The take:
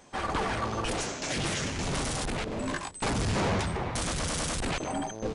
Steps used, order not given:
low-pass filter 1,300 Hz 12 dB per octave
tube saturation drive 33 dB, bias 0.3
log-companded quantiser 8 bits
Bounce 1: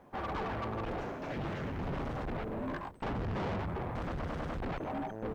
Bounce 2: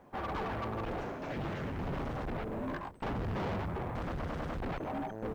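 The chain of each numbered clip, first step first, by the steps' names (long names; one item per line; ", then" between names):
low-pass filter, then log-companded quantiser, then tube saturation
low-pass filter, then tube saturation, then log-companded quantiser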